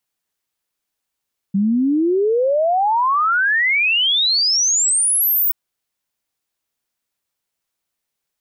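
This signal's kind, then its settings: log sweep 190 Hz -> 16 kHz 3.98 s -13.5 dBFS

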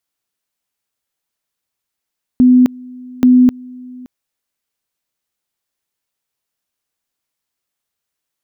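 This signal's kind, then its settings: two-level tone 251 Hz -4.5 dBFS, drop 25 dB, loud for 0.26 s, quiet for 0.57 s, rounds 2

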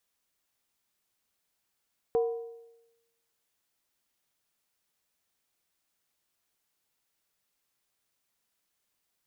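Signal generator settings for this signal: skin hit length 1.72 s, lowest mode 463 Hz, decay 0.98 s, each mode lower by 11 dB, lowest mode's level -21 dB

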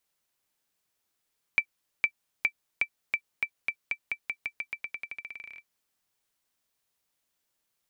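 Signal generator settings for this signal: bouncing ball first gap 0.46 s, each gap 0.89, 2.33 kHz, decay 73 ms -11.5 dBFS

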